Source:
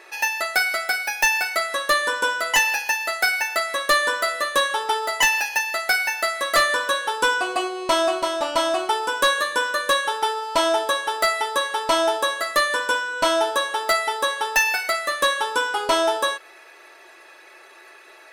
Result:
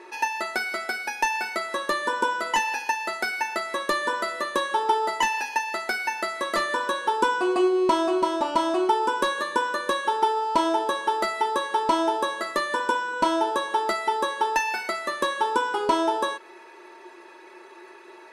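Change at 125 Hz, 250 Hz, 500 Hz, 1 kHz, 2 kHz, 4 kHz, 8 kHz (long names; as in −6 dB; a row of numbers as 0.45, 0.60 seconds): can't be measured, +5.5 dB, −2.5 dB, −0.5 dB, −7.0 dB, −8.5 dB, −10.0 dB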